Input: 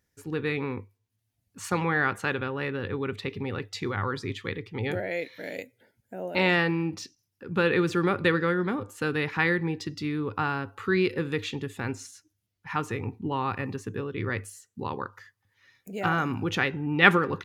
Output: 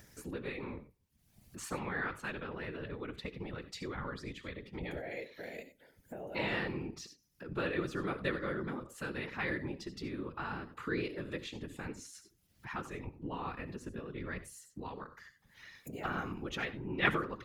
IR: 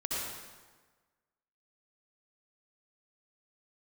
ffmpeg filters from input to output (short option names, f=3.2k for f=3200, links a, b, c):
-filter_complex "[0:a]asplit=2[a][b];[1:a]atrim=start_sample=2205,atrim=end_sample=4410,highshelf=f=4.1k:g=6[c];[b][c]afir=irnorm=-1:irlink=0,volume=-13.5dB[d];[a][d]amix=inputs=2:normalize=0,acompressor=mode=upward:threshold=-25dB:ratio=2.5,afftfilt=real='hypot(re,im)*cos(2*PI*random(0))':imag='hypot(re,im)*sin(2*PI*random(1))':win_size=512:overlap=0.75,volume=-7dB"